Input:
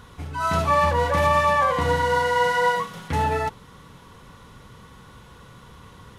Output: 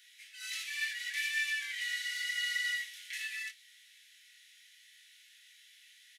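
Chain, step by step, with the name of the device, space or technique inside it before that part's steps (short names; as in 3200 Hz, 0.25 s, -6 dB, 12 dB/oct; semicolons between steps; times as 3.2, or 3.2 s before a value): steep high-pass 1800 Hz 72 dB/oct; double-tracked vocal (doubler 31 ms -13 dB; chorus 0.81 Hz, delay 20 ms, depth 2.1 ms)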